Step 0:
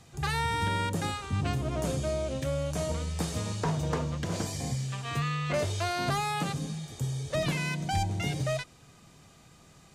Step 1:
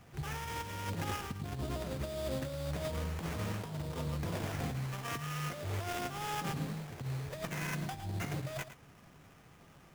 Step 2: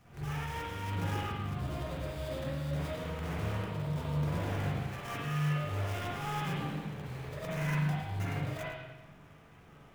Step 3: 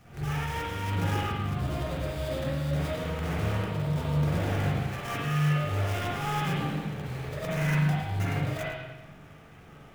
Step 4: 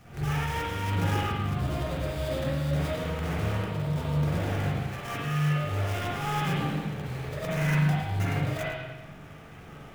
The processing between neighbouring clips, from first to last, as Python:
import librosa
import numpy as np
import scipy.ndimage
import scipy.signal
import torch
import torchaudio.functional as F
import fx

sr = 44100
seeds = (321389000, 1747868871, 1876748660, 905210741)

y1 = fx.over_compress(x, sr, threshold_db=-32.0, ratio=-0.5)
y1 = fx.sample_hold(y1, sr, seeds[0], rate_hz=4200.0, jitter_pct=20)
y1 = y1 + 10.0 ** (-12.5 / 20.0) * np.pad(y1, (int(110 * sr / 1000.0), 0))[:len(y1)]
y1 = F.gain(torch.from_numpy(y1), -5.0).numpy()
y2 = fx.rev_spring(y1, sr, rt60_s=1.1, pass_ms=(40, 47, 58), chirp_ms=60, drr_db=-7.0)
y2 = F.gain(torch.from_numpy(y2), -5.5).numpy()
y3 = fx.notch(y2, sr, hz=1000.0, q=15.0)
y3 = F.gain(torch.from_numpy(y3), 6.0).numpy()
y4 = fx.rider(y3, sr, range_db=10, speed_s=2.0)